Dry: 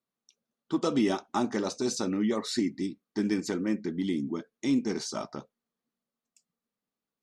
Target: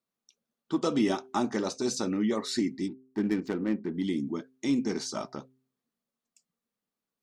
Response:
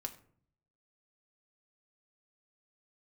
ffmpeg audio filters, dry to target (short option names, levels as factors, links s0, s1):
-filter_complex "[0:a]asettb=1/sr,asplit=3[s0][s1][s2];[s0]atrim=end=2.884[s3];[s1]atrim=start=2.88:end=3.95,asetpts=PTS-STARTPTS,afade=t=in:d=0.004:c=qsin,afade=t=out:st=1.066:d=0.004:c=qsin,adynamicsmooth=sensitivity=6:basefreq=1100[s4];[s2]atrim=start=3.946[s5];[s3][s4]acrossfade=d=0.004:c1=hsin:c2=qsin[s6];[s6][s5]acrossfade=d=0.004:c1=qsin:c2=hsin,bandreject=f=130.3:t=h:w=4,bandreject=f=260.6:t=h:w=4,bandreject=f=390.9:t=h:w=4"